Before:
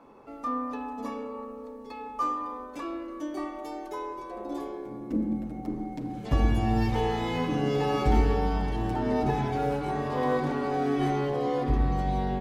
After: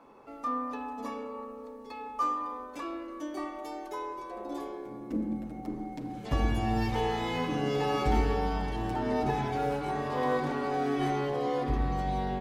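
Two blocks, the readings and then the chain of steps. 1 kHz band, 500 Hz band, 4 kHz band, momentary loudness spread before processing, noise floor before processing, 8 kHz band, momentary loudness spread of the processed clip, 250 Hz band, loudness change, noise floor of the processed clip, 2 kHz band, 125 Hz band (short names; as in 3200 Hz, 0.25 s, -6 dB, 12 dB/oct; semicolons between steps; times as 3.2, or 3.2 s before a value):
-1.0 dB, -2.5 dB, 0.0 dB, 12 LU, -42 dBFS, n/a, 11 LU, -3.5 dB, -3.0 dB, -44 dBFS, -0.5 dB, -4.5 dB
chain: low shelf 450 Hz -5 dB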